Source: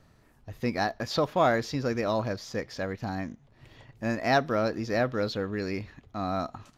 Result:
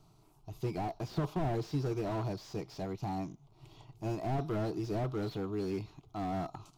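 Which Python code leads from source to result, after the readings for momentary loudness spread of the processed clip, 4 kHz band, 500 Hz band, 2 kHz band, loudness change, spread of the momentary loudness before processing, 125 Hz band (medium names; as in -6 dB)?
11 LU, -13.0 dB, -9.0 dB, -18.0 dB, -7.5 dB, 11 LU, -1.0 dB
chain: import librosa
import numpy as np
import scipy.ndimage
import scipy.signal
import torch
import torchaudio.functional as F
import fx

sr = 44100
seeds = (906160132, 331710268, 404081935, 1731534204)

y = fx.fixed_phaser(x, sr, hz=350.0, stages=8)
y = fx.slew_limit(y, sr, full_power_hz=13.0)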